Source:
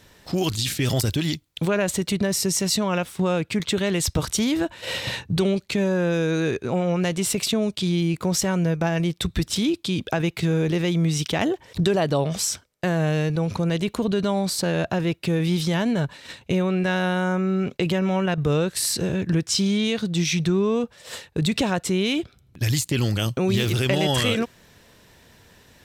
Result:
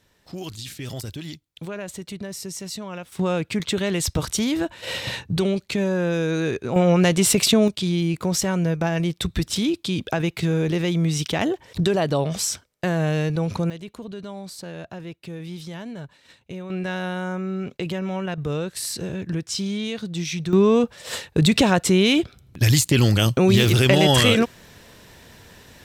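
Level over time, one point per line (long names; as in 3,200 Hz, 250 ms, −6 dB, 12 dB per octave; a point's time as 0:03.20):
−10.5 dB
from 0:03.12 −0.5 dB
from 0:06.76 +6 dB
from 0:07.68 0 dB
from 0:13.70 −12.5 dB
from 0:16.70 −5 dB
from 0:20.53 +5.5 dB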